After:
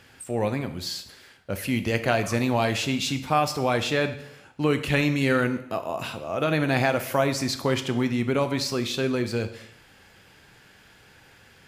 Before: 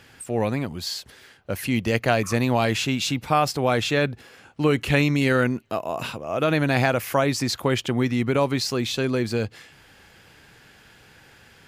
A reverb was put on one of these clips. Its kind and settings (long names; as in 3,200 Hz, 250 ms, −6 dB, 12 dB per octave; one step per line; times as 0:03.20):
dense smooth reverb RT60 0.74 s, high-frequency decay 0.95×, DRR 8 dB
level −2.5 dB